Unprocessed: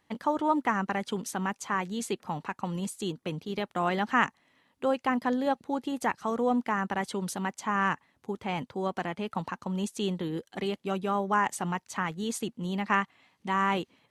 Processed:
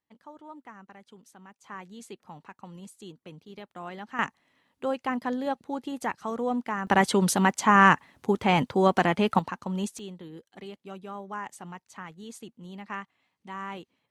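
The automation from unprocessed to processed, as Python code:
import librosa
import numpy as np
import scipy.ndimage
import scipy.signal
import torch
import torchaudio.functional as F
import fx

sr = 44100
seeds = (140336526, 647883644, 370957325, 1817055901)

y = fx.gain(x, sr, db=fx.steps((0.0, -19.5), (1.64, -11.5), (4.19, -2.0), (6.87, 10.0), (9.39, 1.0), (9.99, -10.5)))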